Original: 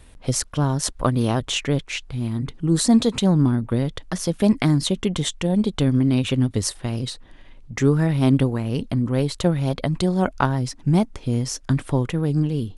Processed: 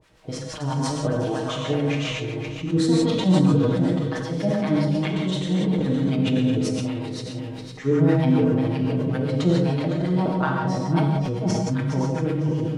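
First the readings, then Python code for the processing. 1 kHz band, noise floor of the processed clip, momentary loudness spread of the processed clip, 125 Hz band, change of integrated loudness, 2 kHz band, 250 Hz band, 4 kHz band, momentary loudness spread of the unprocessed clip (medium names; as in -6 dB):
-0.5 dB, -34 dBFS, 10 LU, -1.5 dB, -1.0 dB, -1.0 dB, -0.5 dB, -4.0 dB, 8 LU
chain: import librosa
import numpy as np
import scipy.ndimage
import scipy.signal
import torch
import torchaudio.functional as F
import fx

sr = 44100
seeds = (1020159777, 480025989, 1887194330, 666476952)

p1 = fx.reverse_delay_fb(x, sr, ms=255, feedback_pct=51, wet_db=-4.5)
p2 = scipy.signal.sosfilt(scipy.signal.butter(2, 50.0, 'highpass', fs=sr, output='sos'), p1)
p3 = fx.low_shelf(p2, sr, hz=130.0, db=-10.5)
p4 = p3 + 0.97 * np.pad(p3, (int(6.4 * sr / 1000.0), 0))[:len(p3)]
p5 = fx.quant_dither(p4, sr, seeds[0], bits=6, dither='triangular')
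p6 = p4 + (p5 * 10.0 ** (-10.0 / 20.0))
p7 = fx.harmonic_tremolo(p6, sr, hz=7.6, depth_pct=100, crossover_hz=770.0)
p8 = fx.spacing_loss(p7, sr, db_at_10k=21)
p9 = p8 + fx.echo_single(p8, sr, ms=494, db=-18.0, dry=0)
p10 = fx.rev_gated(p9, sr, seeds[1], gate_ms=210, shape='flat', drr_db=-1.5)
p11 = fx.sustainer(p10, sr, db_per_s=25.0)
y = p11 * 10.0 ** (-5.0 / 20.0)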